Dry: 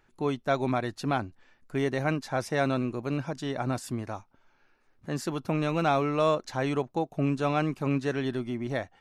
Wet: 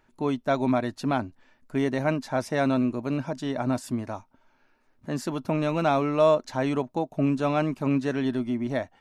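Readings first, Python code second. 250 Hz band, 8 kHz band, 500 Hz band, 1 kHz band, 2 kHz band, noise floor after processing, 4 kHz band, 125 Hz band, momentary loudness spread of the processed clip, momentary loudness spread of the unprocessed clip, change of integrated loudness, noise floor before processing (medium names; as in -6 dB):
+4.5 dB, 0.0 dB, +3.0 dB, +1.5 dB, 0.0 dB, -66 dBFS, 0.0 dB, +0.5 dB, 8 LU, 8 LU, +3.0 dB, -67 dBFS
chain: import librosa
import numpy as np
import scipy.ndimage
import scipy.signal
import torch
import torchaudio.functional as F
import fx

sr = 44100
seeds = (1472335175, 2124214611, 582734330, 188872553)

y = fx.small_body(x, sr, hz=(250.0, 620.0, 930.0), ring_ms=45, db=7)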